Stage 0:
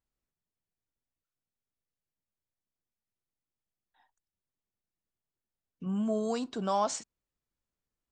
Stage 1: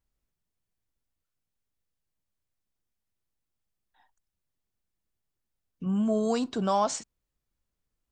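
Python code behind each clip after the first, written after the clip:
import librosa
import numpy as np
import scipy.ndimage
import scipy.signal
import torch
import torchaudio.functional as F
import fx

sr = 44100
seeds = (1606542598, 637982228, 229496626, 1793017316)

y = fx.low_shelf(x, sr, hz=100.0, db=8.5)
y = fx.rider(y, sr, range_db=10, speed_s=0.5)
y = y * librosa.db_to_amplitude(4.5)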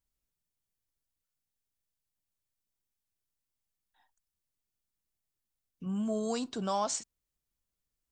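y = fx.high_shelf(x, sr, hz=3800.0, db=8.5)
y = y * librosa.db_to_amplitude(-6.5)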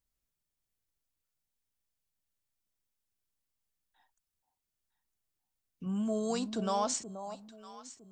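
y = fx.echo_alternate(x, sr, ms=479, hz=900.0, feedback_pct=51, wet_db=-9.5)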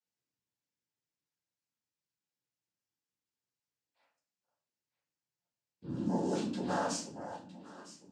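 y = fx.noise_vocoder(x, sr, seeds[0], bands=8)
y = fx.room_shoebox(y, sr, seeds[1], volume_m3=41.0, walls='mixed', distance_m=1.0)
y = y * librosa.db_to_amplitude(-8.5)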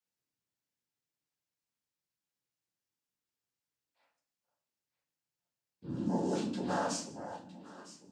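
y = x + 10.0 ** (-22.5 / 20.0) * np.pad(x, (int(159 * sr / 1000.0), 0))[:len(x)]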